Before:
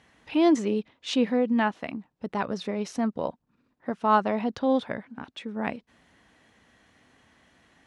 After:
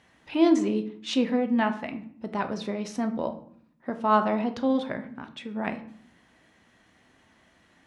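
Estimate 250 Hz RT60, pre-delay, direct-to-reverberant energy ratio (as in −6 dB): 0.90 s, 3 ms, 7.0 dB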